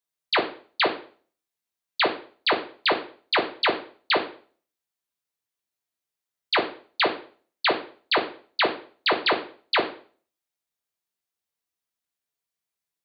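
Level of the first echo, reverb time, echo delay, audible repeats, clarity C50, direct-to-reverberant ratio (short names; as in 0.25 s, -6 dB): none, 0.45 s, none, none, 11.0 dB, 2.0 dB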